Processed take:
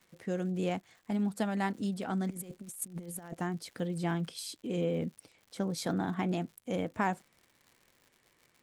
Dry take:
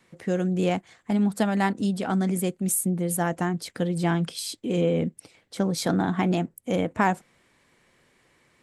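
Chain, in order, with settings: 2.30–3.34 s: compressor with a negative ratio -32 dBFS, ratio -0.5; crackle 150 per s -40 dBFS; trim -8.5 dB

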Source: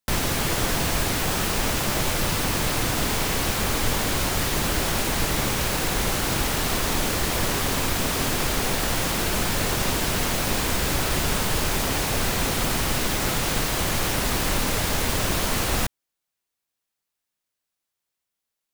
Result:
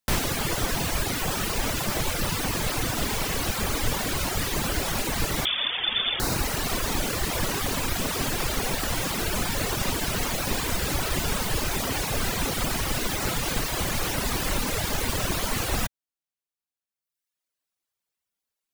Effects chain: 5.45–6.20 s: frequency inversion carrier 3.5 kHz; reverb removal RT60 1.3 s

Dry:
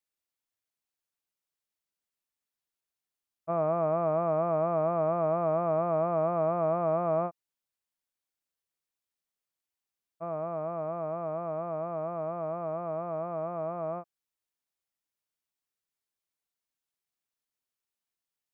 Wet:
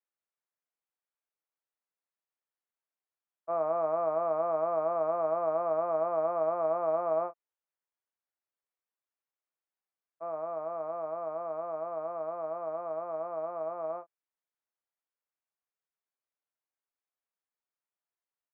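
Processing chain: three-band isolator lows -22 dB, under 340 Hz, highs -20 dB, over 2.2 kHz; doubling 25 ms -11 dB; trim -1 dB

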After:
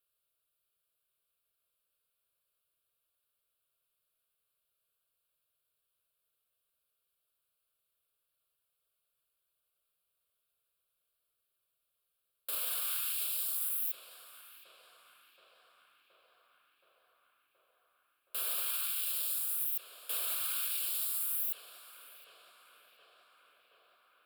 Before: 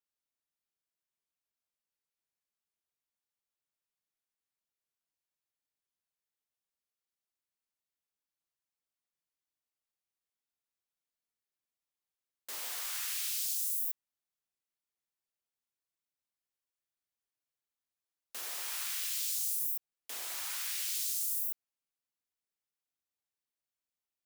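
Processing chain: peaking EQ 12 kHz +6 dB 1.1 oct; in parallel at +1 dB: compressor with a negative ratio -37 dBFS; on the sum: peak limiter -23 dBFS, peak gain reduction 8 dB; static phaser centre 1.3 kHz, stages 8; tape echo 723 ms, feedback 81%, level -8 dB, low-pass 3.1 kHz

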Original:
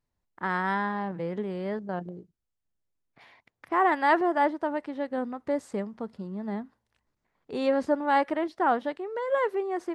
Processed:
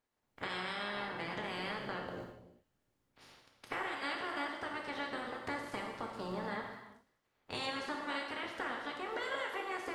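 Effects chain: spectral peaks clipped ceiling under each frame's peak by 27 dB; compression 10:1, threshold -34 dBFS, peak gain reduction 17 dB; on a send: feedback echo behind a high-pass 293 ms, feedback 32%, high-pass 2.4 kHz, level -23 dB; on the sum: gated-style reverb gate 420 ms falling, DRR 0 dB; tape noise reduction on one side only decoder only; trim -4 dB

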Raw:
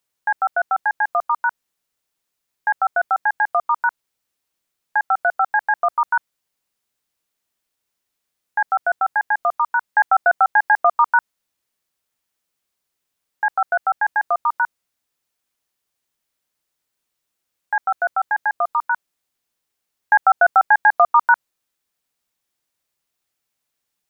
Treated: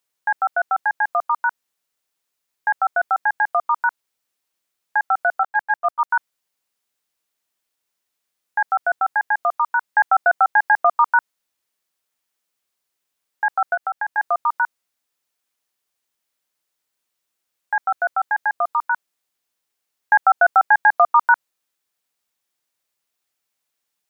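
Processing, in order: 5.43–6.10 s: gate -18 dBFS, range -12 dB; bass shelf 230 Hz -8 dB; 13.74–14.18 s: compression, threshold -21 dBFS, peak gain reduction 6.5 dB

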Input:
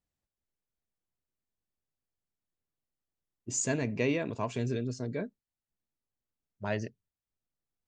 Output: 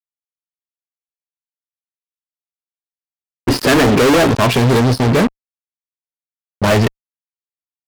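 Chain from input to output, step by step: resampled via 11.025 kHz; time-frequency box 1.32–4.27 s, 240–1900 Hz +9 dB; fuzz box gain 45 dB, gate -48 dBFS; trim +3.5 dB

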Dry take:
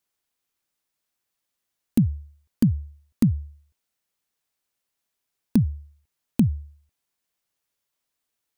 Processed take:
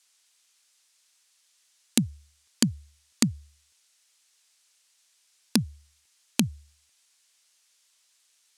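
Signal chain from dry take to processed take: frequency weighting ITU-R 468; trim +7.5 dB

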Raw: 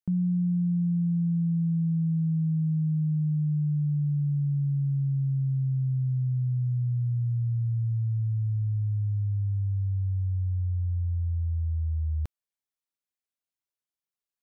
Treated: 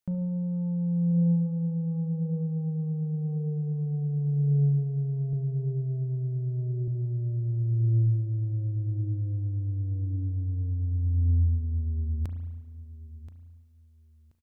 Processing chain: 5.33–6.88 s: high-pass 78 Hz 6 dB/octave; peak limiter -27.5 dBFS, peak gain reduction 5.5 dB; gain riding; saturation -30 dBFS, distortion -19 dB; feedback delay 1029 ms, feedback 21%, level -15 dB; spring tank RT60 1.2 s, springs 35 ms, chirp 35 ms, DRR 7.5 dB; trim +5.5 dB

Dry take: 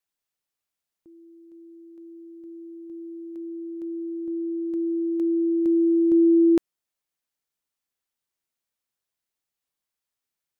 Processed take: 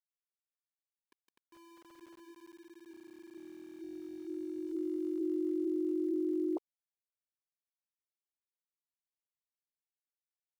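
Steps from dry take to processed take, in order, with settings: formants replaced by sine waves; peaking EQ 190 Hz -14 dB 0.72 oct; peak limiter -21.5 dBFS, peak gain reduction 9 dB; small samples zeroed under -48.5 dBFS; 2.52–4.67 s: comb of notches 500 Hz; trim -6 dB

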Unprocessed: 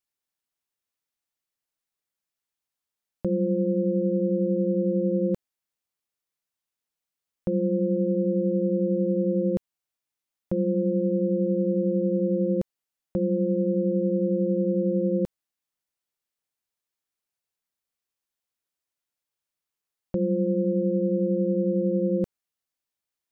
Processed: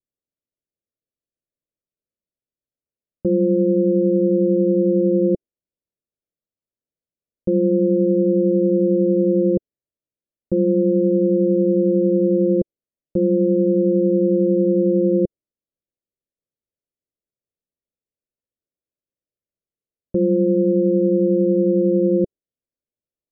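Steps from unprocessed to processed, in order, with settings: steep low-pass 630 Hz 72 dB/octave; dynamic bell 360 Hz, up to +7 dB, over -41 dBFS, Q 1.8; trim +3.5 dB

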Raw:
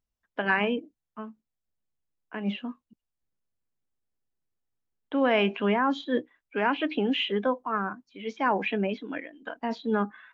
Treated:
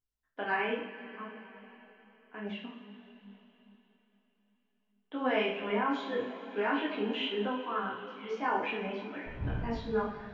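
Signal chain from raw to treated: 9.25–9.73 s: wind noise 110 Hz -30 dBFS; two-slope reverb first 0.52 s, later 4.2 s, from -16 dB, DRR -2 dB; detune thickener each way 21 cents; trim -5.5 dB

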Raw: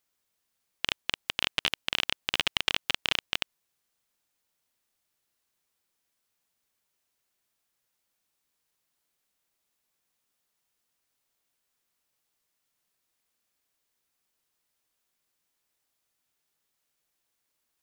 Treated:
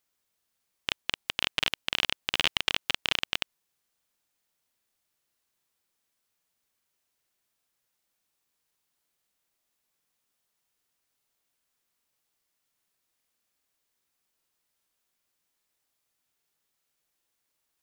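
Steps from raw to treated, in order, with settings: crackling interface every 0.40 s, samples 2048, repeat, from 0.37 s

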